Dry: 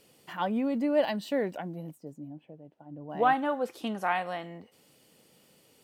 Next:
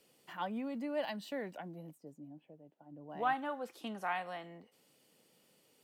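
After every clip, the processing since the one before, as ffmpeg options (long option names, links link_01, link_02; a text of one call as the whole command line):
ffmpeg -i in.wav -filter_complex "[0:a]equalizer=frequency=61:width_type=o:width=1.7:gain=-11,acrossover=split=280|590|6100[link_01][link_02][link_03][link_04];[link_02]acompressor=threshold=-43dB:ratio=6[link_05];[link_01][link_05][link_03][link_04]amix=inputs=4:normalize=0,volume=-7dB" out.wav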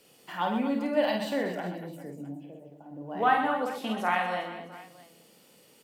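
ffmpeg -i in.wav -filter_complex "[0:a]asplit=2[link_01][link_02];[link_02]adelay=28,volume=-10.5dB[link_03];[link_01][link_03]amix=inputs=2:normalize=0,asplit=2[link_04][link_05];[link_05]aecho=0:1:50|125|237.5|406.2|659.4:0.631|0.398|0.251|0.158|0.1[link_06];[link_04][link_06]amix=inputs=2:normalize=0,volume=8dB" out.wav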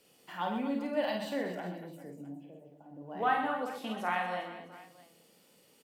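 ffmpeg -i in.wav -filter_complex "[0:a]asplit=2[link_01][link_02];[link_02]adelay=39,volume=-13dB[link_03];[link_01][link_03]amix=inputs=2:normalize=0,volume=-5.5dB" out.wav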